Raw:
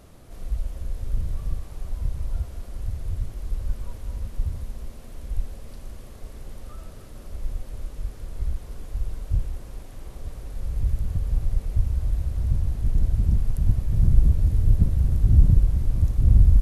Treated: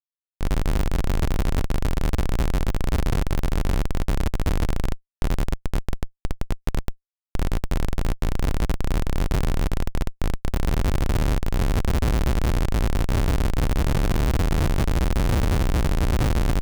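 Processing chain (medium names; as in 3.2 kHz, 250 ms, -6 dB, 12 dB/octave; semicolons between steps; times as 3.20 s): level-controlled noise filter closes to 530 Hz, open at -11 dBFS; Schroeder reverb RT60 2.7 s, combs from 32 ms, DRR 5.5 dB; Schmitt trigger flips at -30 dBFS; trim +1.5 dB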